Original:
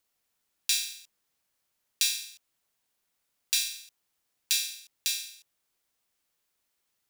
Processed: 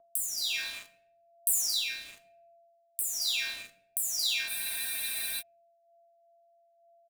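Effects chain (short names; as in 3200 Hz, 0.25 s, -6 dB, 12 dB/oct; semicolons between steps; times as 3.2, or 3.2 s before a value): spectral delay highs early, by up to 0.541 s; bell 4800 Hz -8 dB 2.1 oct; in parallel at +3 dB: compressor 10:1, threshold -52 dBFS, peak gain reduction 22.5 dB; on the sum: echo 0.225 s -13 dB; sample gate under -47.5 dBFS; whine 680 Hz -64 dBFS; rotary speaker horn 1.1 Hz; on a send at -9 dB: reverb, pre-delay 3 ms; on the sum: spectral freeze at 4.51, 0.90 s; gain +8 dB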